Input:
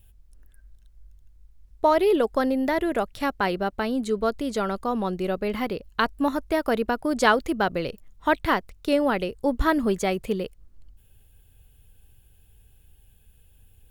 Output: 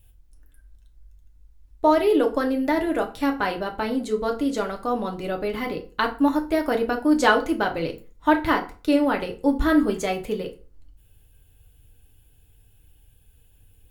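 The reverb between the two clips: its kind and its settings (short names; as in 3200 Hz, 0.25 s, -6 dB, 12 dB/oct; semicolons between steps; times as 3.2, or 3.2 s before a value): FDN reverb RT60 0.37 s, low-frequency decay 1.05×, high-frequency decay 0.75×, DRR 2 dB; gain -1.5 dB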